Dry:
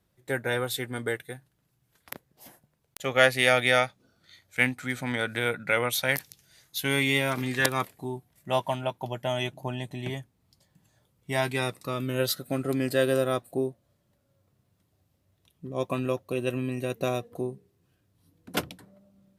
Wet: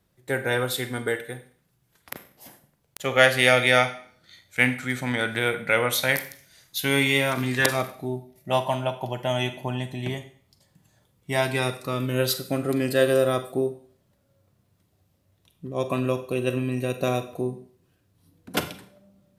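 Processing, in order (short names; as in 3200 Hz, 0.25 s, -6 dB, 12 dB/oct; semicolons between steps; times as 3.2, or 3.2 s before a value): 7.74–8.51 thirty-one-band EQ 630 Hz +8 dB, 1000 Hz -11 dB, 1600 Hz -9 dB, 3150 Hz -4 dB, 8000 Hz -9 dB; Schroeder reverb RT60 0.5 s, combs from 32 ms, DRR 9.5 dB; gain +3 dB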